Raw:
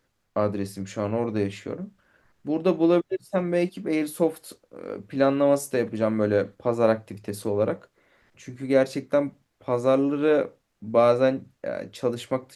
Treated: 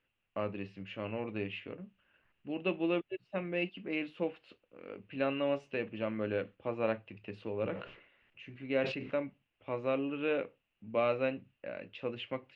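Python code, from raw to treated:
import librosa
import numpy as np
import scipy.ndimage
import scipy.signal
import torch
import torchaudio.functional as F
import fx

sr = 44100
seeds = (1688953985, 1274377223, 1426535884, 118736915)

y = fx.ladder_lowpass(x, sr, hz=2900.0, resonance_pct=80)
y = fx.sustainer(y, sr, db_per_s=82.0, at=(7.52, 9.17))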